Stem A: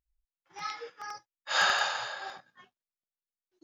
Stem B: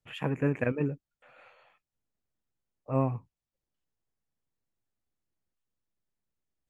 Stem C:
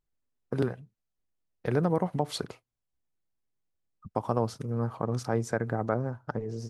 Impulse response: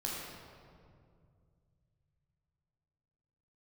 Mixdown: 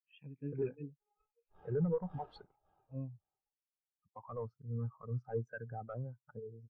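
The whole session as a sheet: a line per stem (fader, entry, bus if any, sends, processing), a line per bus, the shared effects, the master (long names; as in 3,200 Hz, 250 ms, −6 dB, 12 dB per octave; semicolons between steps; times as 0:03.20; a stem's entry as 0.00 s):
+0.5 dB, 0.00 s, no send, echo send −7 dB, adaptive Wiener filter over 9 samples; windowed peak hold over 17 samples; automatic ducking −10 dB, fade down 1.30 s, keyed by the second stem
−6.5 dB, 0.00 s, no send, no echo send, high shelf with overshoot 1,700 Hz +9 dB, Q 1.5
−2.5 dB, 0.00 s, no send, no echo send, parametric band 1,500 Hz +9 dB 2.1 octaves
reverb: not used
echo: repeating echo 551 ms, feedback 40%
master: gain into a clipping stage and back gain 25 dB; every bin expanded away from the loudest bin 2.5 to 1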